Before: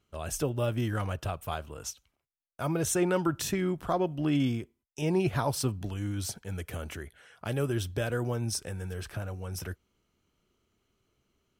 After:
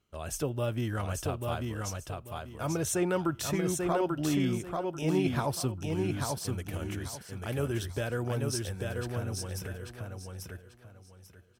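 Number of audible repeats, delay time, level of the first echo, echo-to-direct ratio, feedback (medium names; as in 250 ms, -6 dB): 3, 840 ms, -3.5 dB, -3.0 dB, 25%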